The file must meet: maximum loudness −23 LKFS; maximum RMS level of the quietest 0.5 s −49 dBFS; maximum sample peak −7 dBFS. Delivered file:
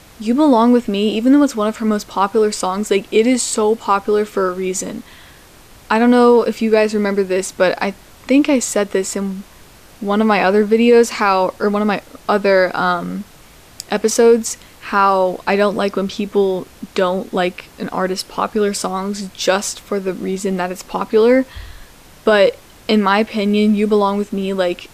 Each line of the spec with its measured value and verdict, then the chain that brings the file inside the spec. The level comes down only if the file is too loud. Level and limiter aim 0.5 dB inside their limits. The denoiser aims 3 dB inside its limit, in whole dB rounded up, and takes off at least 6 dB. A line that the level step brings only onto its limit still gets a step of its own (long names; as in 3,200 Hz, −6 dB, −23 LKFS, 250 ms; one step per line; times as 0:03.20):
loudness −16.0 LKFS: out of spec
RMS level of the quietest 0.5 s −43 dBFS: out of spec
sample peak −3.0 dBFS: out of spec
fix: level −7.5 dB